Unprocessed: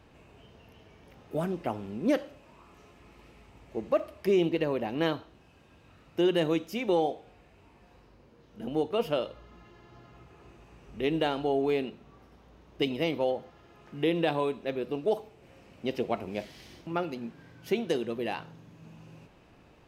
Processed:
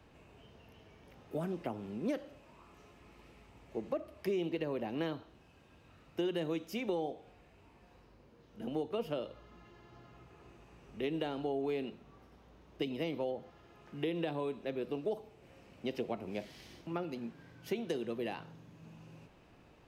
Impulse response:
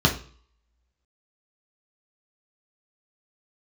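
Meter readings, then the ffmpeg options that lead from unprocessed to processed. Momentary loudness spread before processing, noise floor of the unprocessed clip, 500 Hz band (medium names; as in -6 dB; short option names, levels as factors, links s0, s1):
13 LU, -58 dBFS, -8.0 dB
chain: -filter_complex "[0:a]acrossover=split=110|440[s0][s1][s2];[s0]acompressor=threshold=0.00141:ratio=4[s3];[s1]acompressor=threshold=0.0251:ratio=4[s4];[s2]acompressor=threshold=0.0158:ratio=4[s5];[s3][s4][s5]amix=inputs=3:normalize=0,volume=0.668"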